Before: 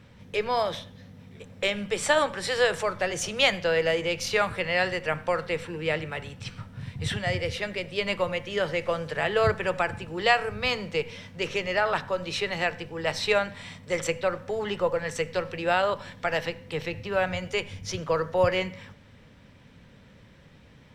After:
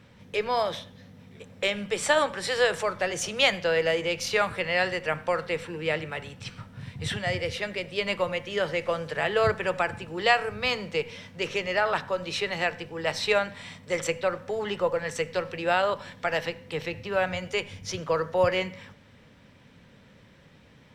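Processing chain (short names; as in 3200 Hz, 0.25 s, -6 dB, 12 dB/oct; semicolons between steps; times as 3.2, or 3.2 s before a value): low shelf 86 Hz -8 dB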